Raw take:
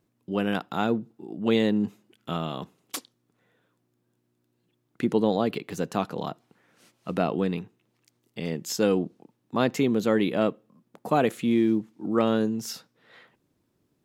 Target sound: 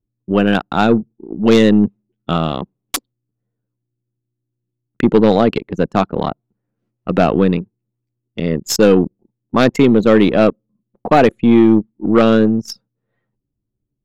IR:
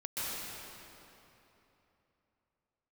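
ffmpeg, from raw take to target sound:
-af "aeval=exprs='0.422*(cos(1*acos(clip(val(0)/0.422,-1,1)))-cos(1*PI/2))+0.0211*(cos(3*acos(clip(val(0)/0.422,-1,1)))-cos(3*PI/2))+0.0133*(cos(8*acos(clip(val(0)/0.422,-1,1)))-cos(8*PI/2))':channel_layout=same,anlmdn=10,aeval=exprs='0.501*sin(PI/2*2.24*val(0)/0.501)':channel_layout=same,volume=4dB"

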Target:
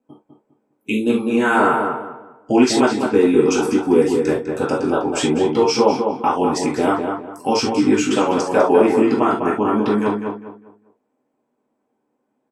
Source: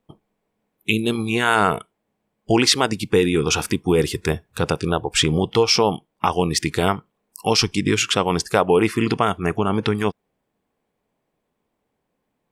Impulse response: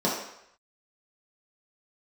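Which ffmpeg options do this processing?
-filter_complex "[0:a]asplit=2[link_01][link_02];[link_02]adelay=201,lowpass=frequency=2200:poles=1,volume=-5dB,asplit=2[link_03][link_04];[link_04]adelay=201,lowpass=frequency=2200:poles=1,volume=0.31,asplit=2[link_05][link_06];[link_06]adelay=201,lowpass=frequency=2200:poles=1,volume=0.31,asplit=2[link_07][link_08];[link_08]adelay=201,lowpass=frequency=2200:poles=1,volume=0.31[link_09];[link_01][link_03][link_05][link_07][link_09]amix=inputs=5:normalize=0[link_10];[1:a]atrim=start_sample=2205,afade=type=out:start_time=0.16:duration=0.01,atrim=end_sample=7497,asetrate=61740,aresample=44100[link_11];[link_10][link_11]afir=irnorm=-1:irlink=0,volume=-11.5dB"

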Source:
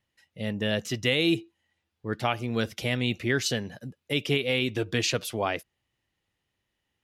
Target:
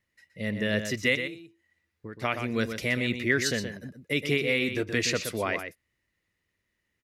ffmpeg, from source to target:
ffmpeg -i in.wav -filter_complex "[0:a]equalizer=frequency=125:width_type=o:width=0.33:gain=-5,equalizer=frequency=800:width_type=o:width=0.33:gain=-10,equalizer=frequency=2000:width_type=o:width=0.33:gain=7,equalizer=frequency=3150:width_type=o:width=0.33:gain=-7,asettb=1/sr,asplit=3[link_01][link_02][link_03];[link_01]atrim=end=1.154[link_04];[link_02]atrim=start=1.15:end=2.22,asetpts=PTS-STARTPTS,afade=type=in:duration=0.004:curve=qsin,afade=type=out:start_time=1.066:duration=0.004:curve=qsin,acompressor=threshold=-37dB:ratio=20[link_05];[link_03]atrim=start=2.216[link_06];[link_04][link_05]acrossfade=duration=0.004:curve1=hsin:curve2=qsin[link_07];[link_07][link_06]acrossfade=duration=0.004:curve1=qsin:curve2=hsin,asplit=2[link_08][link_09];[link_09]adelay=122.4,volume=-8dB,highshelf=frequency=4000:gain=-2.76[link_10];[link_08][link_10]amix=inputs=2:normalize=0" out.wav

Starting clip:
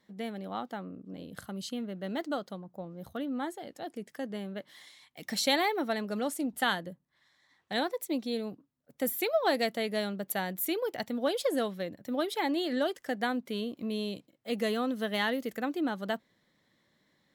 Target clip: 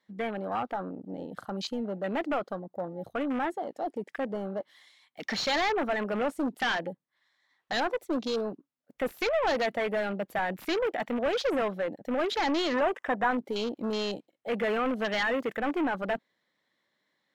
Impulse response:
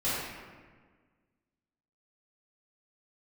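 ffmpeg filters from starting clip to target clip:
-filter_complex "[0:a]asplit=2[link_01][link_02];[link_02]aeval=exprs='val(0)*gte(abs(val(0)),0.0376)':channel_layout=same,volume=-11dB[link_03];[link_01][link_03]amix=inputs=2:normalize=0,asplit=2[link_04][link_05];[link_05]highpass=frequency=720:poles=1,volume=29dB,asoftclip=type=tanh:threshold=-11dB[link_06];[link_04][link_06]amix=inputs=2:normalize=0,lowpass=frequency=3800:poles=1,volume=-6dB,asettb=1/sr,asplit=3[link_07][link_08][link_09];[link_07]atrim=end=12.744[link_10];[link_08]atrim=start=12.74:end=13.31,asetpts=PTS-STARTPTS,afade=type=in:duration=0.004:curve=qsin,afade=type=out:start_time=0.566:duration=0.004:curve=qsin,equalizer=frequency=1000:width_type=o:width=0.67:gain=9,equalizer=frequency=4000:width_type=o:width=0.67:gain=-11,equalizer=frequency=16000:width_type=o:width=0.67:gain=-7[link_11];[link_09]atrim=start=13.306[link_12];[link_10][link_11]acrossfade=duration=0.004:curve1=hsin:curve2=qsin[link_13];[link_13][link_12]acrossfade=duration=0.004:curve1=qsin:curve2=hsin,afwtdn=0.0355,volume=-8.5dB"

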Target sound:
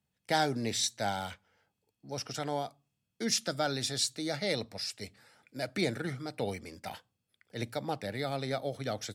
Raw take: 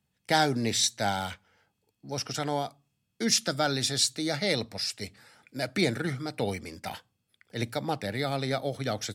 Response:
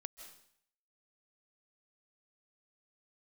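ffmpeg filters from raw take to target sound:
-af "equalizer=frequency=570:width=1.5:gain=2.5,volume=-5.5dB"

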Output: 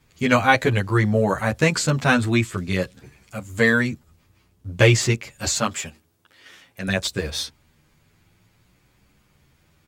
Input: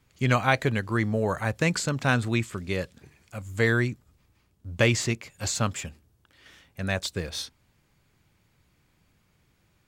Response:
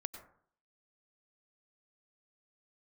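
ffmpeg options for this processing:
-filter_complex "[0:a]asettb=1/sr,asplit=3[link_01][link_02][link_03];[link_01]atrim=end=5.584[link_04];[link_02]atrim=start=5.58:end=6.88,asetpts=PTS-STARTPTS,afade=type=in:duration=0.004:curve=qsin,afade=type=out:start_time=1.296:duration=0.004:curve=qsin,highpass=frequency=280:poles=1[link_05];[link_03]atrim=start=6.876[link_06];[link_04][link_05]acrossfade=duration=0.004:curve1=hsin:curve2=qsin[link_07];[link_07][link_06]acrossfade=duration=0.004:curve1=qsin:curve2=hsin,asplit=2[link_08][link_09];[link_09]adelay=9.9,afreqshift=0.51[link_10];[link_08][link_10]amix=inputs=2:normalize=1,volume=9dB"

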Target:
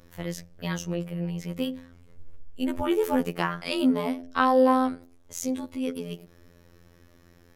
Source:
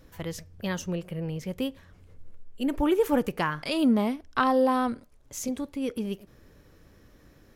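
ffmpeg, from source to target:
ffmpeg -i in.wav -af "bandreject=frequency=87.93:width_type=h:width=4,bandreject=frequency=175.86:width_type=h:width=4,bandreject=frequency=263.79:width_type=h:width=4,bandreject=frequency=351.72:width_type=h:width=4,bandreject=frequency=439.65:width_type=h:width=4,bandreject=frequency=527.58:width_type=h:width=4,bandreject=frequency=615.51:width_type=h:width=4,bandreject=frequency=703.44:width_type=h:width=4,bandreject=frequency=791.37:width_type=h:width=4,afftfilt=real='hypot(re,im)*cos(PI*b)':imag='0':win_size=2048:overlap=0.75,volume=4dB" out.wav

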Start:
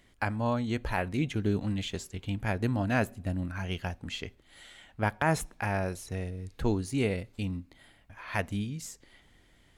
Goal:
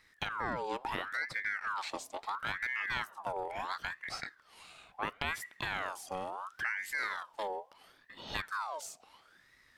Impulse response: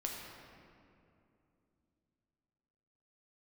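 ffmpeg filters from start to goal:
-af "acompressor=threshold=-31dB:ratio=3,aeval=exprs='val(0)*sin(2*PI*1300*n/s+1300*0.5/0.73*sin(2*PI*0.73*n/s))':channel_layout=same"

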